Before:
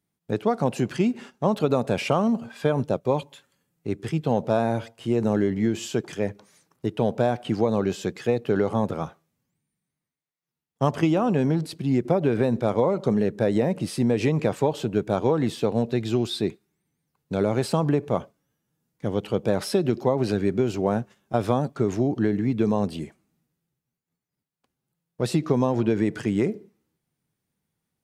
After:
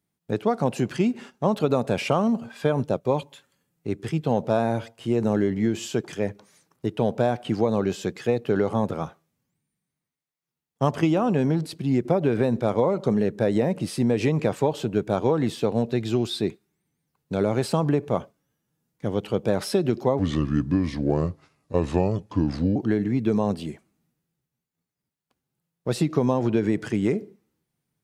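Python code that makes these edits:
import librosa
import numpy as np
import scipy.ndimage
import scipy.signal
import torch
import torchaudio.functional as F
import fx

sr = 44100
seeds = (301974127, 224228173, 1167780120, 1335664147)

y = fx.edit(x, sr, fx.speed_span(start_s=20.19, length_s=1.9, speed=0.74), tone=tone)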